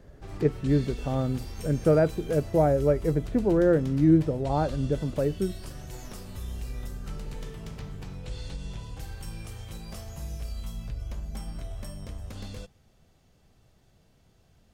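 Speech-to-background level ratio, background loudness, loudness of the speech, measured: 14.5 dB, -40.0 LUFS, -25.5 LUFS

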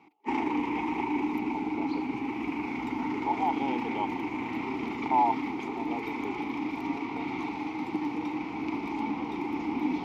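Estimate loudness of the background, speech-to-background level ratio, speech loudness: -32.5 LUFS, -2.0 dB, -34.5 LUFS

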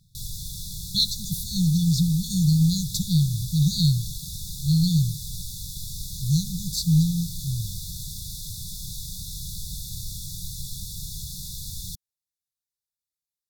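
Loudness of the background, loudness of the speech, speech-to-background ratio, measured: -34.5 LUFS, -23.5 LUFS, 11.0 dB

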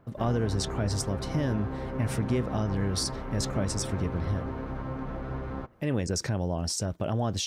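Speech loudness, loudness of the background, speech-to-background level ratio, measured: -31.0 LUFS, -36.0 LUFS, 5.0 dB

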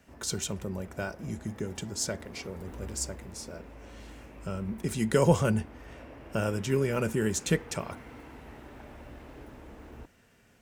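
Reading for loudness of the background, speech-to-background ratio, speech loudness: -48.5 LUFS, 17.0 dB, -31.5 LUFS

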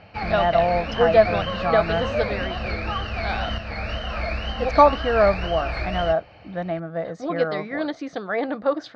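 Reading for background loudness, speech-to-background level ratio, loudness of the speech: -28.5 LUFS, 6.0 dB, -22.5 LUFS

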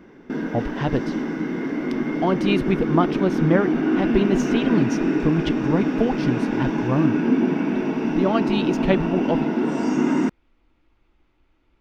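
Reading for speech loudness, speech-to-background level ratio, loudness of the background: -24.0 LUFS, -1.0 dB, -23.0 LUFS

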